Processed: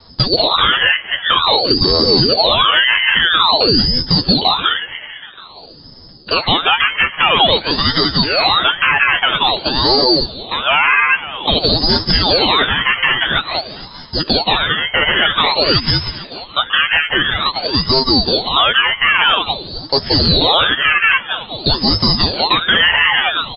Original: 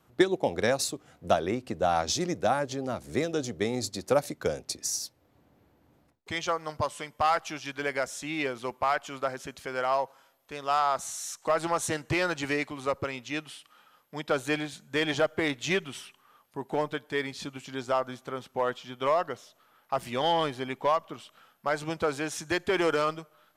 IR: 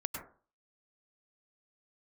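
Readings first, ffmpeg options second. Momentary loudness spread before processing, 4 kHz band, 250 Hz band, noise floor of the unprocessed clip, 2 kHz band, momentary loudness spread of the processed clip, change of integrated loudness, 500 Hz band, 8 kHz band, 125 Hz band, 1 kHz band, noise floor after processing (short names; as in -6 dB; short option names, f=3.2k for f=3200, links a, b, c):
11 LU, +27.0 dB, +12.5 dB, -66 dBFS, +20.5 dB, 8 LU, +17.0 dB, +9.0 dB, under -40 dB, +16.5 dB, +13.5 dB, -37 dBFS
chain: -filter_complex "[0:a]highpass=53,acompressor=threshold=-36dB:ratio=1.5,aeval=exprs='0.2*sin(PI/2*1.78*val(0)/0.2)':c=same,asplit=5[a][b][c][d][e];[b]adelay=461,afreqshift=-65,volume=-19dB[f];[c]adelay=922,afreqshift=-130,volume=-25.7dB[g];[d]adelay=1383,afreqshift=-195,volume=-32.5dB[h];[e]adelay=1844,afreqshift=-260,volume=-39.2dB[i];[a][f][g][h][i]amix=inputs=5:normalize=0,flanger=delay=4.1:depth=4.7:regen=-50:speed=0.56:shape=sinusoidal,asoftclip=type=hard:threshold=-20dB,asplit=2[j][k];[k]adelay=12,volume=-6dB[l];[j][l]amix=inputs=2:normalize=0[m];[1:a]atrim=start_sample=2205,afade=t=out:st=0.16:d=0.01,atrim=end_sample=7497,asetrate=24255,aresample=44100[n];[m][n]afir=irnorm=-1:irlink=0,lowpass=f=2.4k:t=q:w=0.5098,lowpass=f=2.4k:t=q:w=0.6013,lowpass=f=2.4k:t=q:w=0.9,lowpass=f=2.4k:t=q:w=2.563,afreqshift=-2800,alimiter=level_in=16.5dB:limit=-1dB:release=50:level=0:latency=1,aeval=exprs='val(0)*sin(2*PI*1500*n/s+1500*0.7/0.5*sin(2*PI*0.5*n/s))':c=same"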